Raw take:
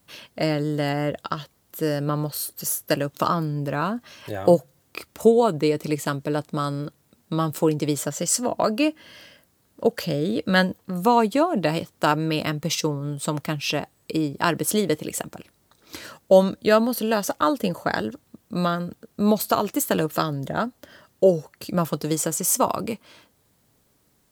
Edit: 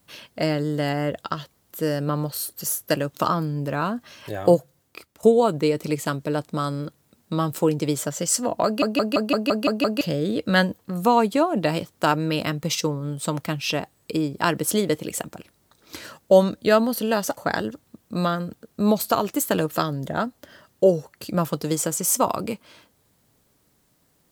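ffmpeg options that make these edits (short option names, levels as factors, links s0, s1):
-filter_complex "[0:a]asplit=11[s0][s1][s2][s3][s4][s5][s6][s7][s8][s9][s10];[s0]atrim=end=5.23,asetpts=PTS-STARTPTS,afade=t=out:st=4.51:d=0.72:silence=0.188365[s11];[s1]atrim=start=5.23:end=8.822,asetpts=PTS-STARTPTS,afade=t=in:d=0.004:c=hsin:silence=0.188365[s12];[s2]atrim=start=8.648:end=8.822[s13];[s3]atrim=start=8.648:end=8.822[s14];[s4]atrim=start=8.648:end=8.822[s15];[s5]atrim=start=8.648:end=8.822[s16];[s6]atrim=start=8.648:end=8.822[s17];[s7]atrim=start=8.648:end=8.822[s18];[s8]atrim=start=8.648:end=8.822[s19];[s9]atrim=start=10.008:end=17.372[s20];[s10]atrim=start=17.768[s21];[s11][s12]concat=n=2:v=0:a=1[s22];[s22][s13]acrossfade=d=0.004:c1=hsin:c2=hsin[s23];[s23][s14]acrossfade=d=0.004:c1=hsin:c2=hsin[s24];[s24][s15]acrossfade=d=0.004:c1=hsin:c2=hsin[s25];[s25][s16]acrossfade=d=0.004:c1=hsin:c2=hsin[s26];[s26][s17]acrossfade=d=0.004:c1=hsin:c2=hsin[s27];[s27][s18]acrossfade=d=0.004:c1=hsin:c2=hsin[s28];[s28][s19]acrossfade=d=0.004:c1=hsin:c2=hsin[s29];[s29][s20]acrossfade=d=0.004:c1=hsin:c2=hsin[s30];[s30][s21]acrossfade=d=0.004:c1=hsin:c2=hsin"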